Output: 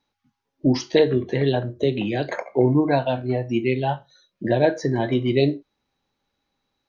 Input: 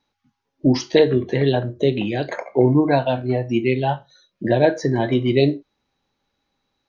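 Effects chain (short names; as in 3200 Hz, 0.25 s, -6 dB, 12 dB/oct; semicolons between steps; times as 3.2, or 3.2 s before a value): 1.83–2.42 three-band squash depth 40%; gain -2.5 dB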